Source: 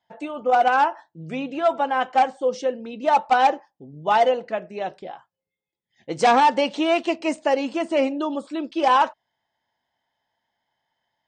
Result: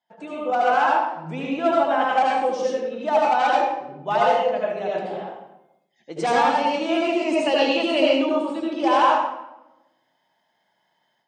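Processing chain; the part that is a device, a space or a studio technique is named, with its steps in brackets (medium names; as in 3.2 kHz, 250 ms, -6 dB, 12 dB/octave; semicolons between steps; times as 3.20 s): 7.37–8.06 s: high-order bell 3.5 kHz +11.5 dB 1 oct; far laptop microphone (reverberation RT60 0.90 s, pre-delay 70 ms, DRR -4.5 dB; high-pass 150 Hz 24 dB/octave; level rider gain up to 8.5 dB); trim -6 dB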